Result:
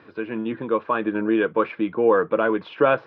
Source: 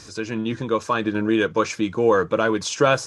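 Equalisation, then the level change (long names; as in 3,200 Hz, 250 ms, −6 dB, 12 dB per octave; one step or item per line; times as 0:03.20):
high-pass filter 230 Hz 12 dB per octave
low-pass filter 3,400 Hz 24 dB per octave
high-frequency loss of the air 420 metres
+1.5 dB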